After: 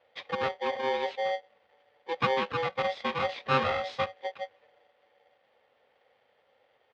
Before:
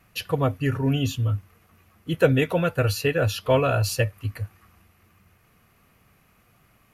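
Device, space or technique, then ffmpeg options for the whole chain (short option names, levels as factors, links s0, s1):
ring modulator pedal into a guitar cabinet: -filter_complex "[0:a]asplit=3[s0][s1][s2];[s0]afade=t=out:st=3.12:d=0.02[s3];[s1]asplit=2[s4][s5];[s5]adelay=23,volume=0.596[s6];[s4][s6]amix=inputs=2:normalize=0,afade=t=in:st=3.12:d=0.02,afade=t=out:st=4.25:d=0.02[s7];[s2]afade=t=in:st=4.25:d=0.02[s8];[s3][s7][s8]amix=inputs=3:normalize=0,aeval=exprs='val(0)*sgn(sin(2*PI*660*n/s))':c=same,highpass=110,equalizer=f=170:t=q:w=4:g=-10,equalizer=f=310:t=q:w=4:g=-5,equalizer=f=500:t=q:w=4:g=6,lowpass=f=3800:w=0.5412,lowpass=f=3800:w=1.3066,volume=0.376"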